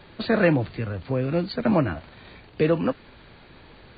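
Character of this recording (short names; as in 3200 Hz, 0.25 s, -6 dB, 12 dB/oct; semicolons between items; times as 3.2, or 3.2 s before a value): noise floor -50 dBFS; spectral tilt -5.0 dB/oct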